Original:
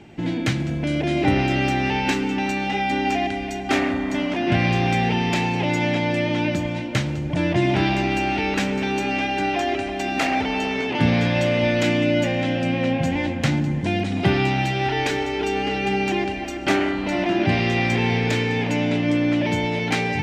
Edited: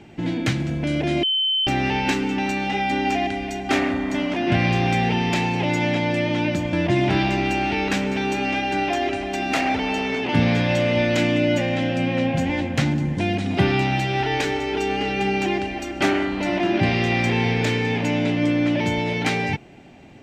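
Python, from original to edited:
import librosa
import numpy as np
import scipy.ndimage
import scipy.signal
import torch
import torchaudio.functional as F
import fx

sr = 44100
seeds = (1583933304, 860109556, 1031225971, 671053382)

y = fx.edit(x, sr, fx.bleep(start_s=1.23, length_s=0.44, hz=3070.0, db=-18.0),
    fx.cut(start_s=6.73, length_s=0.66), tone=tone)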